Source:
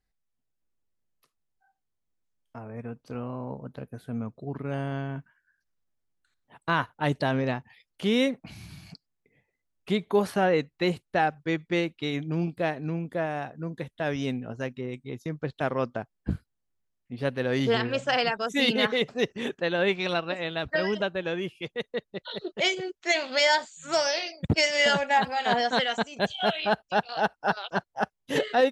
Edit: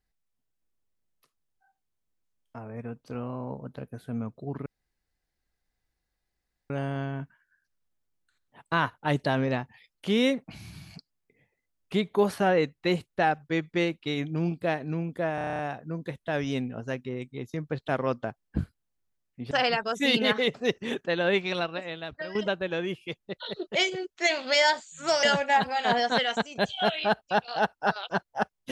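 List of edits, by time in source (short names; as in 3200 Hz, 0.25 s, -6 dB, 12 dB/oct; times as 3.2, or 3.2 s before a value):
4.66 insert room tone 2.04 s
13.31 stutter 0.03 s, 9 plays
17.23–18.05 cut
19.91–20.89 fade out, to -13 dB
21.74–22.05 cut
24.08–24.84 cut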